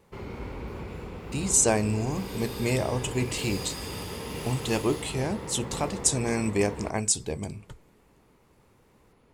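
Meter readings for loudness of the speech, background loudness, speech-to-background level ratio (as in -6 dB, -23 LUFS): -27.5 LUFS, -37.0 LUFS, 9.5 dB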